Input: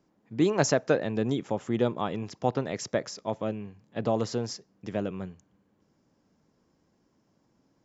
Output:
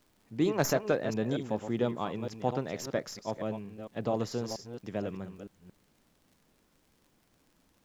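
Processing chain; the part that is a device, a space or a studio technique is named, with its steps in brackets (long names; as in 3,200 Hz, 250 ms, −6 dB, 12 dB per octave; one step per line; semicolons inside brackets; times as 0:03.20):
delay that plays each chunk backwards 228 ms, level −8.5 dB
record under a worn stylus (stylus tracing distortion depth 0.043 ms; surface crackle 77 per second −49 dBFS; pink noise bed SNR 37 dB)
level −4 dB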